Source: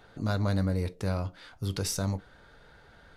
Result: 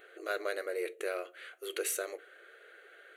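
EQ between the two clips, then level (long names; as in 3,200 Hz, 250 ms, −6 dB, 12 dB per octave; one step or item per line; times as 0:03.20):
linear-phase brick-wall high-pass 330 Hz
phaser with its sweep stopped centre 2,200 Hz, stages 4
notch filter 3,600 Hz, Q 11
+5.5 dB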